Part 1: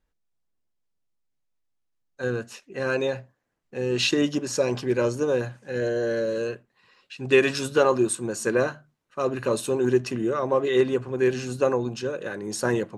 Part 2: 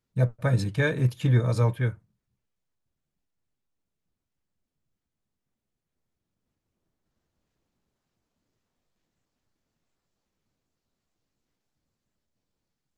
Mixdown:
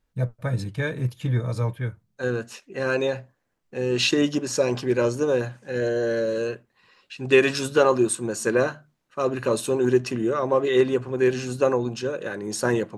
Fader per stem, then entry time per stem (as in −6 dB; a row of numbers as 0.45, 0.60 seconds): +1.5, −2.5 decibels; 0.00, 0.00 seconds